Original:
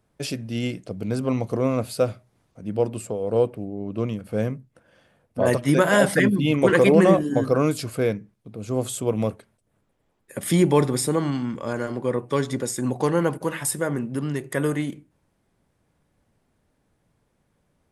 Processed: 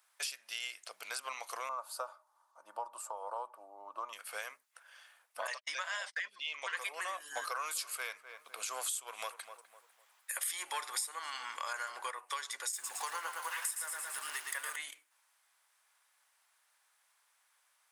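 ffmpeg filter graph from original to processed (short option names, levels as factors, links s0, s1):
-filter_complex "[0:a]asettb=1/sr,asplit=3[s0][s1][s2];[s0]atrim=end=1.694[s3];[s1]atrim=start=1.69:end=4.13,asetpts=PTS-STARTPTS,afade=t=in:d=0.004:c=qsin,afade=t=out:st=2.436:d=0.004:c=qsin,highshelf=f=1500:t=q:w=3:g=-13,aecho=1:1:3.4:0.49,atrim=end_sample=107604[s4];[s2]atrim=start=4.126[s5];[s3][s4]acrossfade=d=0.004:c1=hsin:c2=qsin[s6];[s6][s5]acrossfade=d=0.004:c1=qsin:c2=hsin,asettb=1/sr,asplit=3[s7][s8][s9];[s7]atrim=end=5.474[s10];[s8]atrim=start=5.47:end=6.77,asetpts=PTS-STARTPTS,afade=t=in:d=0.004:c=qsin,afade=t=out:st=1.296:d=0.004:c=qsin,highpass=140,equalizer=f=350:t=q:w=4:g=-9,equalizer=f=850:t=q:w=4:g=-4,equalizer=f=1400:t=q:w=4:g=-5,equalizer=f=5200:t=q:w=4:g=3,lowpass=f=6500:w=0.5412,lowpass=f=6500:w=1.3066,agate=range=0.00562:threshold=0.0398:ratio=16:release=100:detection=peak[s11];[s9]atrim=start=6.766[s12];[s10][s11]acrossfade=d=0.004:c1=hsin:c2=qsin[s13];[s13][s12]acrossfade=d=0.004:c1=qsin:c2=hsin,asettb=1/sr,asplit=3[s14][s15][s16];[s14]atrim=end=7.374[s17];[s15]atrim=start=7.37:end=12.11,asetpts=PTS-STARTPTS,afade=t=in:d=0.004:c=qsin,afade=t=out:st=4.736:d=0.004:c=qsin,acontrast=86,asplit=2[s18][s19];[s19]adelay=252,lowpass=f=1500:p=1,volume=0.126,asplit=2[s20][s21];[s21]adelay=252,lowpass=f=1500:p=1,volume=0.35,asplit=2[s22][s23];[s23]adelay=252,lowpass=f=1500:p=1,volume=0.35[s24];[s18][s20][s22][s24]amix=inputs=4:normalize=0,atrim=end_sample=209034[s25];[s16]atrim=start=12.106[s26];[s17][s25]acrossfade=d=0.004:c1=hsin:c2=qsin[s27];[s27][s26]acrossfade=d=0.004:c1=qsin:c2=hsin,asettb=1/sr,asplit=3[s28][s29][s30];[s28]atrim=end=12.724[s31];[s29]atrim=start=12.72:end=14.76,asetpts=PTS-STARTPTS,afade=t=in:d=0.004:c=qsin,afade=t=out:st=2.036:d=0.004:c=qsin,aeval=exprs='val(0)+0.5*0.015*sgn(val(0))':c=same,agate=range=0.0224:threshold=0.0282:ratio=3:release=100:detection=peak,aecho=1:1:112|224|336|448|560|672|784:0.562|0.292|0.152|0.0791|0.0411|0.0214|0.0111,atrim=end_sample=89964[s32];[s30]atrim=start=14.756[s33];[s31][s32]acrossfade=d=0.004:c1=hsin:c2=qsin[s34];[s34][s33]acrossfade=d=0.004:c1=qsin:c2=hsin,highpass=f=1000:w=0.5412,highpass=f=1000:w=1.3066,highshelf=f=4900:g=6.5,acompressor=threshold=0.01:ratio=6,volume=1.41"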